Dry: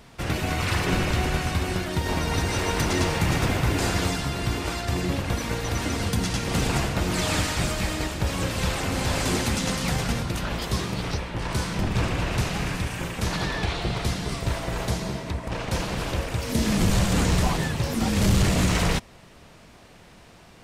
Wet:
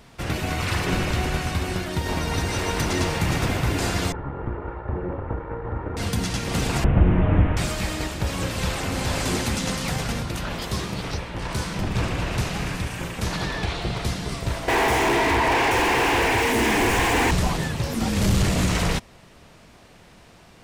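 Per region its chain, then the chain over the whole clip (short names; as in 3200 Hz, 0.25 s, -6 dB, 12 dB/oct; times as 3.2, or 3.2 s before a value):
4.12–5.97 minimum comb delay 2.2 ms + LPF 1400 Hz 24 dB/oct
6.84–7.57 delta modulation 16 kbps, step -32.5 dBFS + tilt -3 dB/oct
9.82–11.9 notches 60/120/180/240/300/360/420 Hz + hard clip -18 dBFS
14.68–17.31 fixed phaser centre 870 Hz, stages 8 + doubler 46 ms -6 dB + overdrive pedal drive 43 dB, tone 1900 Hz, clips at -11.5 dBFS
whole clip: dry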